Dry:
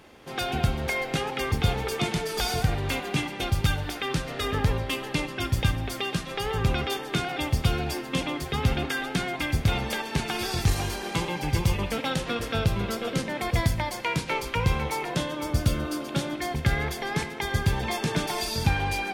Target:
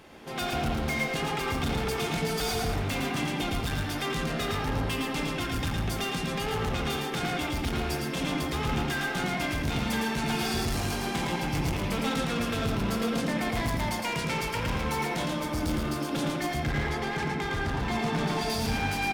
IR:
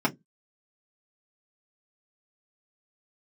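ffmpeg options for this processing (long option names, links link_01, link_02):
-filter_complex "[0:a]asettb=1/sr,asplit=3[link_01][link_02][link_03];[link_01]atrim=end=16.604[link_04];[link_02]atrim=start=16.6:end=18.5,asetpts=PTS-STARTPTS,afade=type=in:duration=0.004:curve=qsin,afade=type=out:start_time=1.896:duration=0.004:curve=qsin,aemphasis=mode=reproduction:type=50fm[link_05];[link_03]atrim=start=18.496[link_06];[link_04][link_05]acrossfade=duration=0.004:curve1=hsin:curve2=qsin[link_07];[link_07][link_06]acrossfade=duration=0.004:curve1=qsin:curve2=hsin,asoftclip=type=hard:threshold=-29dB,aecho=1:1:111:0.631,asplit=2[link_08][link_09];[1:a]atrim=start_sample=2205,adelay=82[link_10];[link_09][link_10]afir=irnorm=-1:irlink=0,volume=-17.5dB[link_11];[link_08][link_11]amix=inputs=2:normalize=0"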